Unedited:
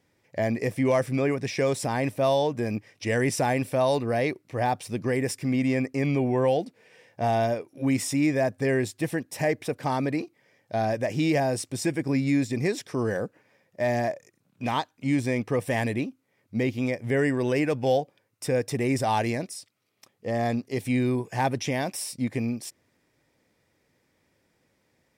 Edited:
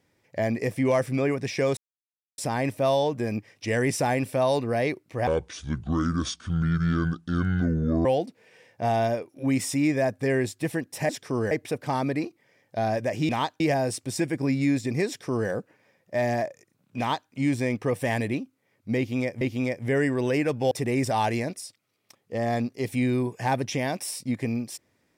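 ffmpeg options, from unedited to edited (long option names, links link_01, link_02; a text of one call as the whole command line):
ffmpeg -i in.wav -filter_complex "[0:a]asplit=10[link_01][link_02][link_03][link_04][link_05][link_06][link_07][link_08][link_09][link_10];[link_01]atrim=end=1.77,asetpts=PTS-STARTPTS,afade=type=out:start_time=1.766:duration=0.004:curve=hsin,apad=pad_dur=0.61[link_11];[link_02]atrim=start=1.77:end=4.664,asetpts=PTS-STARTPTS,afade=type=in:duration=0.004:curve=hsin[link_12];[link_03]atrim=start=4.66:end=6.44,asetpts=PTS-STARTPTS,asetrate=28224,aresample=44100,atrim=end_sample=122653,asetpts=PTS-STARTPTS[link_13];[link_04]atrim=start=6.436:end=9.482[link_14];[link_05]atrim=start=12.728:end=13.152[link_15];[link_06]atrim=start=9.478:end=11.262[link_16];[link_07]atrim=start=14.638:end=14.952[link_17];[link_08]atrim=start=11.258:end=17.072[link_18];[link_09]atrim=start=16.628:end=17.932[link_19];[link_10]atrim=start=18.638[link_20];[link_11][link_12]concat=n=2:v=0:a=1[link_21];[link_21][link_13]acrossfade=duration=0.004:curve1=hsin:curve2=hsin[link_22];[link_22][link_14]acrossfade=duration=0.004:curve1=hsin:curve2=hsin[link_23];[link_23][link_15]acrossfade=duration=0.004:curve1=hsin:curve2=hsin[link_24];[link_24][link_16]acrossfade=duration=0.004:curve1=hsin:curve2=hsin[link_25];[link_25][link_17]acrossfade=duration=0.004:curve1=hsin:curve2=hsin[link_26];[link_26][link_18]acrossfade=duration=0.004:curve1=hsin:curve2=hsin[link_27];[link_27][link_19]acrossfade=duration=0.004:curve1=hsin:curve2=hsin[link_28];[link_28][link_20]acrossfade=duration=0.004:curve1=hsin:curve2=hsin" out.wav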